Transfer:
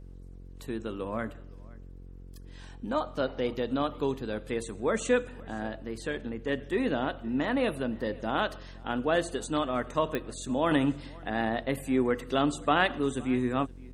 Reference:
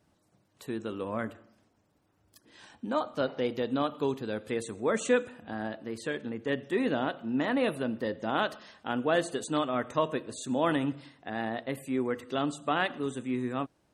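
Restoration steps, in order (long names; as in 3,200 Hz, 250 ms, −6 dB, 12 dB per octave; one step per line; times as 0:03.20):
click removal
hum removal 45 Hz, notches 11
echo removal 517 ms −24 dB
level 0 dB, from 0:10.71 −4 dB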